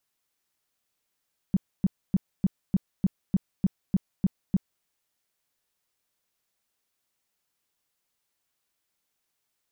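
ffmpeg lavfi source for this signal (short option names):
-f lavfi -i "aevalsrc='0.141*sin(2*PI*190*mod(t,0.3))*lt(mod(t,0.3),5/190)':d=3.3:s=44100"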